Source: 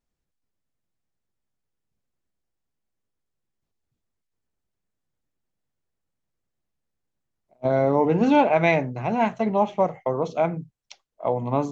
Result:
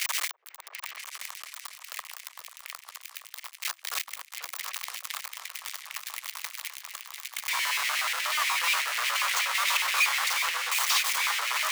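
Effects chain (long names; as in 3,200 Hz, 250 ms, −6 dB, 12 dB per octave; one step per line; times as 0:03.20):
sign of each sample alone
parametric band 540 Hz −13.5 dB 1.9 octaves
in parallel at −4 dB: sample-rate reduction 1,200 Hz, jitter 0%
on the sum: auto-filter high-pass square 8.3 Hz 810–1,800 Hz
frequency shifter +340 Hz
on a send: echo whose low-pass opens from repeat to repeat 245 ms, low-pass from 200 Hz, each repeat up 2 octaves, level −3 dB
on the sum: level +3.5 dB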